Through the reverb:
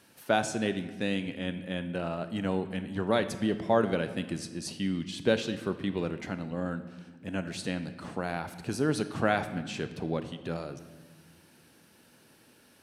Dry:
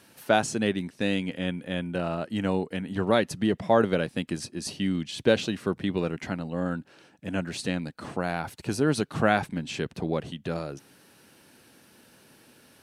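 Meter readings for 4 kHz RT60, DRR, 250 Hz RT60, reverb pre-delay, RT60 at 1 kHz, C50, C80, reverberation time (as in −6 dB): 1.1 s, 10.5 dB, 2.4 s, 32 ms, 1.3 s, 12.0 dB, 13.5 dB, 1.5 s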